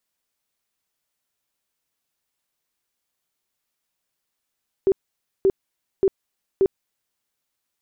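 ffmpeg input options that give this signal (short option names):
-f lavfi -i "aevalsrc='0.224*sin(2*PI*387*mod(t,0.58))*lt(mod(t,0.58),19/387)':d=2.32:s=44100"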